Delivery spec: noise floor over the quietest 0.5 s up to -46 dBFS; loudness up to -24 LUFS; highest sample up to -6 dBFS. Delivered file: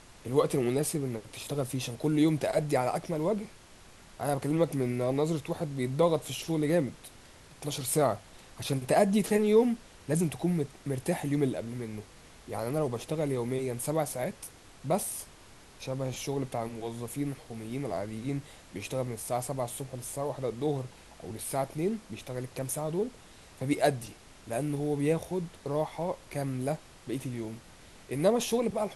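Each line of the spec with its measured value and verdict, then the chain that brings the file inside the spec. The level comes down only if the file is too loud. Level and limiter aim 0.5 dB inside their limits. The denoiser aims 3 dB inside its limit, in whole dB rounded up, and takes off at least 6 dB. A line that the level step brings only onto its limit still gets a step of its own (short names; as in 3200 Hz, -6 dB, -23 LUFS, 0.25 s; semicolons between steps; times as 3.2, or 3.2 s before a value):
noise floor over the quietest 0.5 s -53 dBFS: OK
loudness -31.5 LUFS: OK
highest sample -11.5 dBFS: OK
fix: none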